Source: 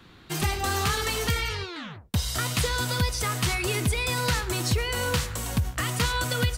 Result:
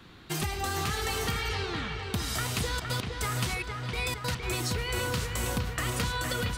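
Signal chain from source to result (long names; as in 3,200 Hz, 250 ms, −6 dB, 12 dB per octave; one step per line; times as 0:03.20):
downward compressor, threshold −28 dBFS, peak gain reduction 8.5 dB
0:02.63–0:04.42: gate pattern "x.x..xxxx...x" 145 BPM −24 dB
delay with a low-pass on its return 463 ms, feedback 63%, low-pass 3,500 Hz, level −5 dB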